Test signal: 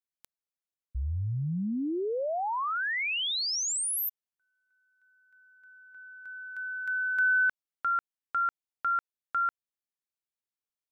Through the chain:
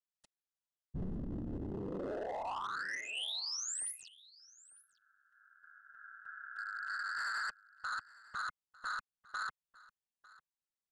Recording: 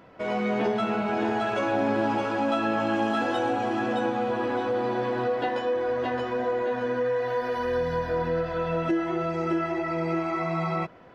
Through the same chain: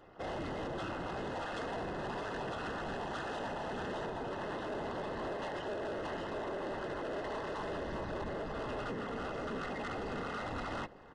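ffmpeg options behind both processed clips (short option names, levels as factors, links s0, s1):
-af "asubboost=boost=3.5:cutoff=88,alimiter=limit=0.112:level=0:latency=1:release=382,afftfilt=real='hypot(re,im)*cos(2*PI*random(0))':imag='hypot(re,im)*sin(2*PI*random(1))':win_size=512:overlap=0.75,aeval=exprs='val(0)*sin(2*PI*100*n/s)':c=same,asoftclip=type=hard:threshold=0.0119,asuperstop=centerf=2300:order=12:qfactor=6.5,aecho=1:1:900:0.0841,aresample=22050,aresample=44100,volume=1.41"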